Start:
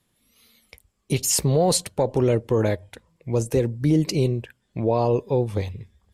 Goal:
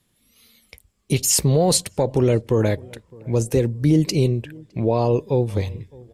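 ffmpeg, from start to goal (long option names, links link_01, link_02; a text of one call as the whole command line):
ffmpeg -i in.wav -filter_complex "[0:a]equalizer=frequency=870:width_type=o:width=2.1:gain=-3.5,asplit=2[link_01][link_02];[link_02]adelay=611,lowpass=frequency=1100:poles=1,volume=-24dB,asplit=2[link_03][link_04];[link_04]adelay=611,lowpass=frequency=1100:poles=1,volume=0.46,asplit=2[link_05][link_06];[link_06]adelay=611,lowpass=frequency=1100:poles=1,volume=0.46[link_07];[link_03][link_05][link_07]amix=inputs=3:normalize=0[link_08];[link_01][link_08]amix=inputs=2:normalize=0,volume=3.5dB" out.wav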